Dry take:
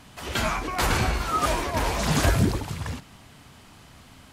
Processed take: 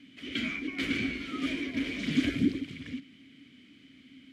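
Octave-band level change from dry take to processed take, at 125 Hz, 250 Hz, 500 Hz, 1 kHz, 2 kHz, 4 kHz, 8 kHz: -15.0 dB, +0.5 dB, -13.0 dB, -23.0 dB, -5.0 dB, -6.0 dB, -19.5 dB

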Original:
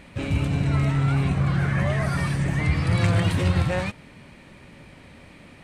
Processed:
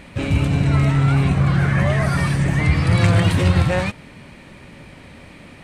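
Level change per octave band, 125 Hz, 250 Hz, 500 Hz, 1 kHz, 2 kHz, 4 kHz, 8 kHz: +5.5 dB, +5.5 dB, +5.5 dB, +5.5 dB, +5.5 dB, +5.5 dB, +5.5 dB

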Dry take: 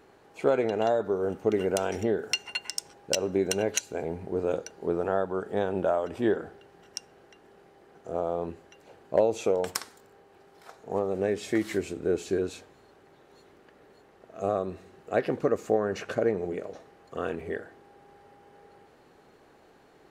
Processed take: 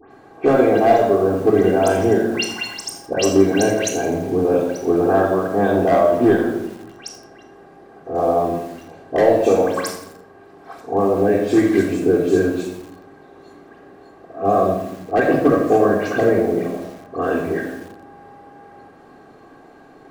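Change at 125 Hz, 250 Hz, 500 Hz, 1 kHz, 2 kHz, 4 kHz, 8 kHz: +12.5 dB, +14.0 dB, +11.0 dB, +14.0 dB, +11.5 dB, +6.0 dB, +5.5 dB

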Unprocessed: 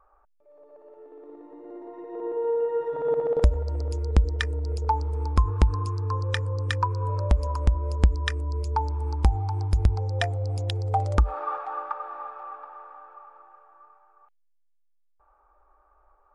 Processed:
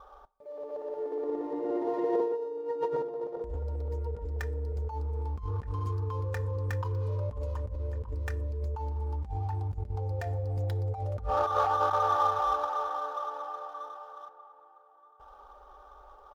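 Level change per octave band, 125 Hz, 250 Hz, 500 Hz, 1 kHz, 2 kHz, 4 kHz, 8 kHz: -6.5 dB, -2.5 dB, -2.5 dB, 0.0 dB, -8.0 dB, -12.0 dB, no reading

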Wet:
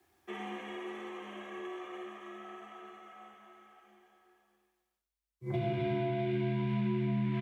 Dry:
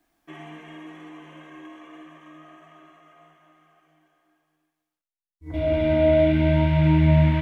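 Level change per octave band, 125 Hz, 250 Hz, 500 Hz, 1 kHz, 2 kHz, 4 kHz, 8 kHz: -14.0 dB, -11.5 dB, -14.0 dB, -7.0 dB, -10.0 dB, -9.5 dB, no reading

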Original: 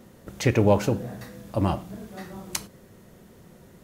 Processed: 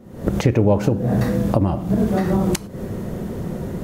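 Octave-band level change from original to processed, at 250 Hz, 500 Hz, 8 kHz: +9.5 dB, +5.0 dB, +1.5 dB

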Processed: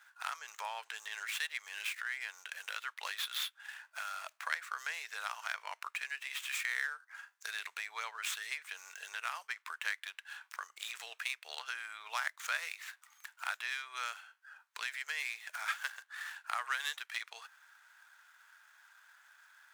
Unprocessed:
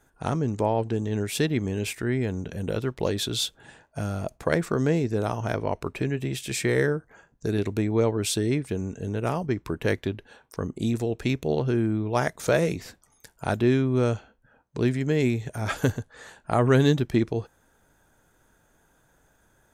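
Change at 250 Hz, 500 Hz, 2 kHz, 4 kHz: under -40 dB, -33.5 dB, -2.0 dB, -5.5 dB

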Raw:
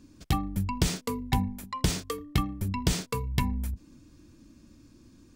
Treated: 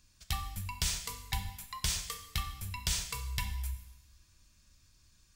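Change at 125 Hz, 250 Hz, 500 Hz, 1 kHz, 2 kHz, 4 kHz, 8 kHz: -9.5 dB, -20.5 dB, -19.0 dB, -8.5 dB, -3.0 dB, -0.5 dB, +1.0 dB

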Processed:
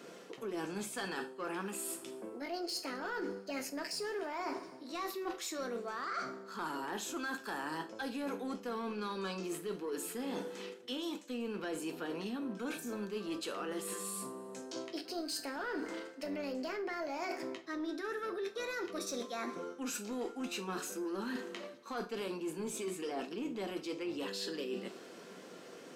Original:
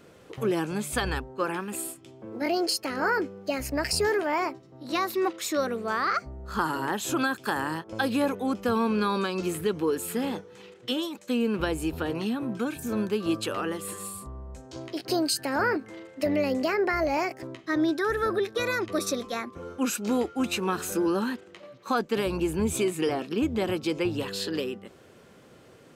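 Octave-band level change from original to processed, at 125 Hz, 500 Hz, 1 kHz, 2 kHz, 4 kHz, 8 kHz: -15.5 dB, -11.5 dB, -11.5 dB, -11.5 dB, -9.5 dB, -8.0 dB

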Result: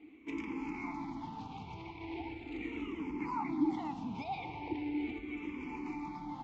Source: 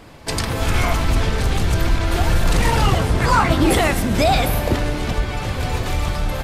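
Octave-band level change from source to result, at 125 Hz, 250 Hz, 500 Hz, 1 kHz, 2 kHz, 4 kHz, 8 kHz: -31.0 dB, -13.0 dB, -24.5 dB, -19.5 dB, -23.0 dB, -29.5 dB, under -35 dB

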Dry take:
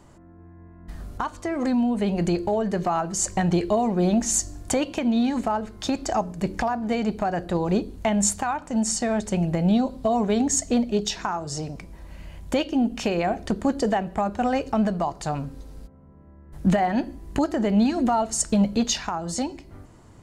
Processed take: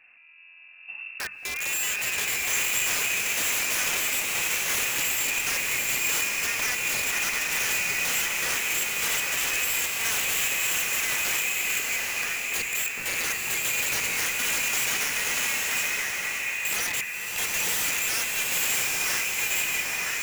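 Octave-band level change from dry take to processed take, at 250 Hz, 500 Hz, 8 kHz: -24.0 dB, -15.0 dB, +4.5 dB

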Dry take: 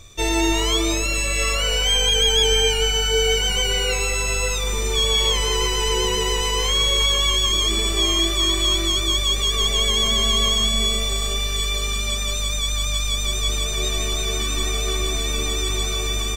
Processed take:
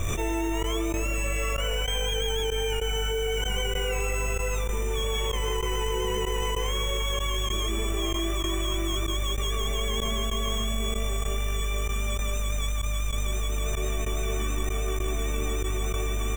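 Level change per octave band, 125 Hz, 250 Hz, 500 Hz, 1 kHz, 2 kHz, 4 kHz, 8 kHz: -3.5 dB, -5.0 dB, -5.0 dB, -5.5 dB, -8.0 dB, -14.0 dB, -12.0 dB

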